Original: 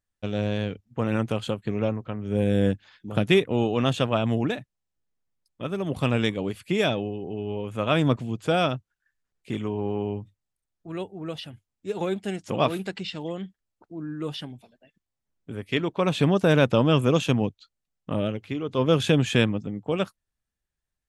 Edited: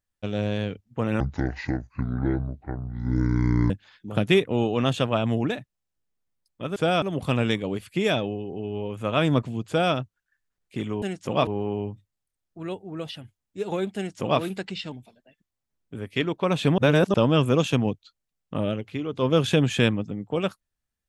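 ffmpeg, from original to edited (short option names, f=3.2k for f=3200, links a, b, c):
-filter_complex "[0:a]asplit=10[a][b][c][d][e][f][g][h][i][j];[a]atrim=end=1.204[k];[b]atrim=start=1.2:end=2.7,asetpts=PTS-STARTPTS,asetrate=26460,aresample=44100[l];[c]atrim=start=2.696:end=5.762[m];[d]atrim=start=8.418:end=8.682[n];[e]atrim=start=5.758:end=9.762[o];[f]atrim=start=12.248:end=12.702[p];[g]atrim=start=9.758:end=13.212[q];[h]atrim=start=14.478:end=16.342[r];[i]atrim=start=16.338:end=16.702,asetpts=PTS-STARTPTS,areverse[s];[j]atrim=start=16.698[t];[k][l]acrossfade=d=0.004:c1=hsin:c2=hsin[u];[u][m]acrossfade=d=0.004:c1=hsin:c2=hsin[v];[v][n]acrossfade=d=0.004:c1=hsin:c2=hsin[w];[w][o]acrossfade=d=0.004:c1=hsin:c2=hsin[x];[x][p]acrossfade=d=0.004:c1=hsin:c2=hsin[y];[y][q]acrossfade=d=0.004:c1=hsin:c2=hsin[z];[z][r]acrossfade=d=0.004:c1=hsin:c2=hsin[aa];[aa][s]acrossfade=d=0.004:c1=hsin:c2=hsin[ab];[ab][t]acrossfade=d=0.004:c1=hsin:c2=hsin"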